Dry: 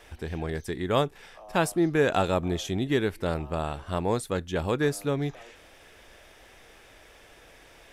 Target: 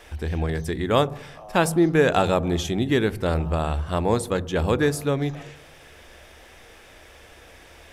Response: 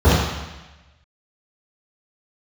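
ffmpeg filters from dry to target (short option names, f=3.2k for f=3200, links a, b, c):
-filter_complex "[0:a]asplit=2[a][b];[b]lowpass=1.5k[c];[1:a]atrim=start_sample=2205[d];[c][d]afir=irnorm=-1:irlink=0,volume=-43dB[e];[a][e]amix=inputs=2:normalize=0,volume=4.5dB"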